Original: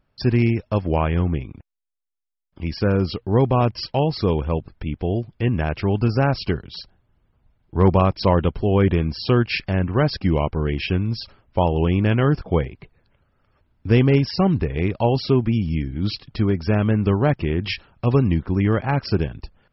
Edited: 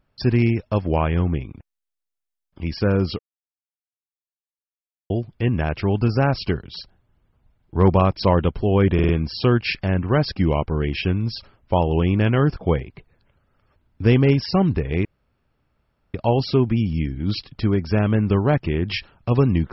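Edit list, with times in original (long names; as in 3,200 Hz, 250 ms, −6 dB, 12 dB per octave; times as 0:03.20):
0:03.19–0:05.10: silence
0:08.94: stutter 0.05 s, 4 plays
0:14.90: splice in room tone 1.09 s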